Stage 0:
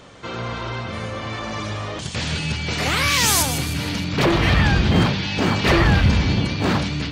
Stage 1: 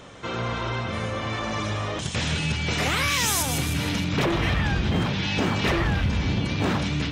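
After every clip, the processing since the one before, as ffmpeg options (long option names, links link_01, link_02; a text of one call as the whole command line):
ffmpeg -i in.wav -af "bandreject=frequency=4500:width=8.9,acompressor=threshold=-20dB:ratio=6" out.wav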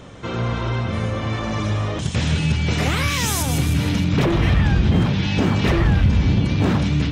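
ffmpeg -i in.wav -af "lowshelf=frequency=360:gain=9" out.wav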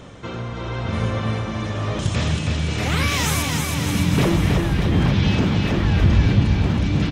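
ffmpeg -i in.wav -af "tremolo=f=0.97:d=0.57,aecho=1:1:320|608|867.2|1100|1310:0.631|0.398|0.251|0.158|0.1" out.wav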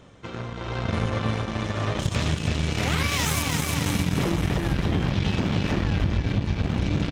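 ffmpeg -i in.wav -af "acompressor=threshold=-19dB:ratio=16,aeval=exprs='0.251*(cos(1*acos(clip(val(0)/0.251,-1,1)))-cos(1*PI/2))+0.0251*(cos(7*acos(clip(val(0)/0.251,-1,1)))-cos(7*PI/2))':channel_layout=same" out.wav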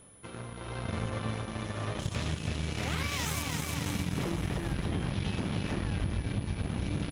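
ffmpeg -i in.wav -af "aeval=exprs='val(0)+0.00447*sin(2*PI*10000*n/s)':channel_layout=same,volume=-8.5dB" out.wav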